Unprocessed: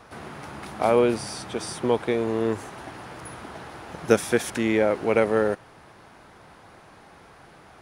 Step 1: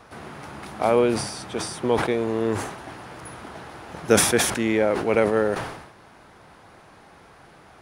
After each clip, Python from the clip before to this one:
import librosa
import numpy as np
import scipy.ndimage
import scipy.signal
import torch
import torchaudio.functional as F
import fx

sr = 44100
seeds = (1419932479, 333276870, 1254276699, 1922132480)

y = fx.sustainer(x, sr, db_per_s=64.0)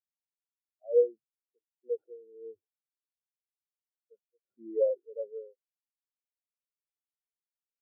y = fx.tremolo_random(x, sr, seeds[0], hz=1.8, depth_pct=75)
y = scipy.signal.sosfilt(scipy.signal.cheby1(6, 6, 2000.0, 'lowpass', fs=sr, output='sos'), y)
y = fx.spectral_expand(y, sr, expansion=4.0)
y = y * 10.0 ** (-3.0 / 20.0)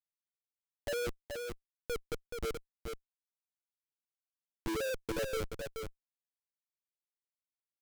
y = fx.schmitt(x, sr, flips_db=-41.0)
y = y + 10.0 ** (-5.5 / 20.0) * np.pad(y, (int(427 * sr / 1000.0), 0))[:len(y)]
y = y * 10.0 ** (2.5 / 20.0)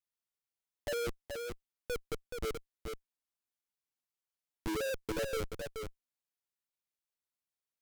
y = fx.vibrato(x, sr, rate_hz=2.7, depth_cents=41.0)